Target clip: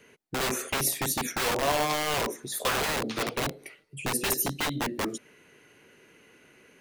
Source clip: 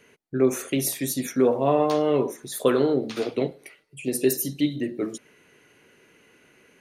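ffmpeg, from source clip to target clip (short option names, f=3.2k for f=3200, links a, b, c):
-filter_complex "[0:a]asettb=1/sr,asplit=3[a][b][c];[a]atrim=end=3.424[d];[b]atrim=start=3.42:end=4.14,asetpts=PTS-STARTPTS,afade=t=in:d=0.004:c=qsin,afade=t=out:st=0.716:d=0.004:c=qsin,lowshelf=f=250:g=5.5[e];[c]atrim=start=4.136[f];[d][e]acrossfade=d=0.004:c1=hsin:c2=qsin[g];[g][f]acrossfade=d=0.004:c1=qsin:c2=hsin,acrossover=split=660|3200[h][i][j];[h]aeval=exprs='(mod(15.8*val(0)+1,2)-1)/15.8':c=same[k];[k][i][j]amix=inputs=3:normalize=0"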